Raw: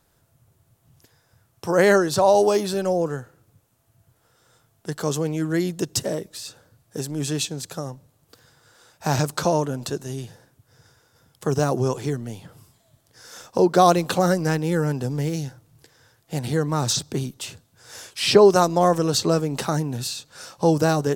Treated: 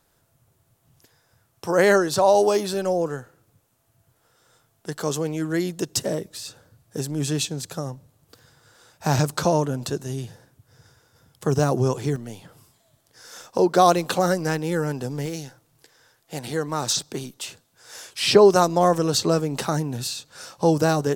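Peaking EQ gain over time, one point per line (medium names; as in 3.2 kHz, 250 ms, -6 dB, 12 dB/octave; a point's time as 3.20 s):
peaking EQ 78 Hz 2.9 oct
-4.5 dB
from 6.04 s +2.5 dB
from 12.16 s -6 dB
from 15.26 s -12 dB
from 18.09 s -1.5 dB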